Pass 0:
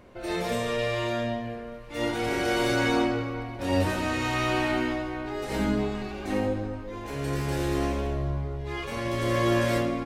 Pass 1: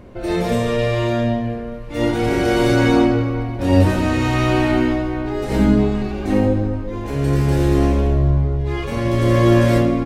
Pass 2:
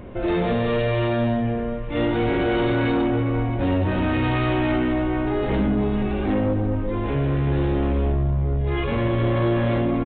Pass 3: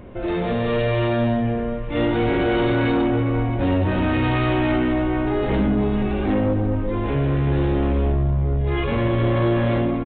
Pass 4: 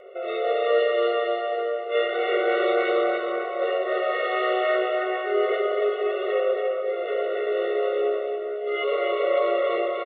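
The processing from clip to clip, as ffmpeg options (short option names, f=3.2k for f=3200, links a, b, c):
-af "lowshelf=f=450:g=10.5,volume=4dB"
-af "acompressor=threshold=-19dB:ratio=3,aresample=8000,asoftclip=type=tanh:threshold=-18.5dB,aresample=44100,volume=3dB"
-af "dynaudnorm=f=410:g=3:m=3.5dB,volume=-2dB"
-af "aecho=1:1:283|566|849|1132:0.631|0.208|0.0687|0.0227,afftfilt=real='re*eq(mod(floor(b*sr/1024/370),2),1)':imag='im*eq(mod(floor(b*sr/1024/370),2),1)':win_size=1024:overlap=0.75,volume=2dB"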